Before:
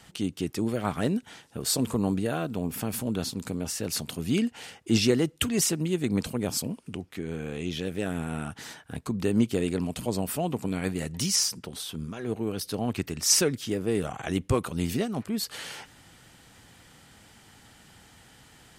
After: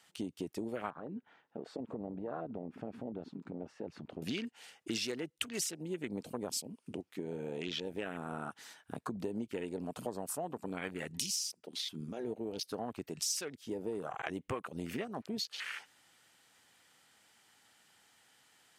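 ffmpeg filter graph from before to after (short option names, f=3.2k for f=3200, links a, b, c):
-filter_complex "[0:a]asettb=1/sr,asplit=3[a][b][c];[a]atrim=end=0.904[d];[b]atrim=start=0.9:end=4.22,asetpts=PTS-STARTPTS,afade=t=in:d=0.004:c=qsin,afade=t=out:st=3.316:d=0.004:c=qsin,lowpass=1.6k,acompressor=threshold=-33dB:ratio=4:attack=3.2:release=140:knee=1:detection=peak[e];[c]atrim=start=4.216[f];[d][e]acrossfade=d=0.004:c1=hsin:c2=qsin[g];[g][f]acrossfade=d=0.004:c1=qsin:c2=hsin,highpass=f=780:p=1,afwtdn=0.01,acompressor=threshold=-42dB:ratio=6,volume=6.5dB"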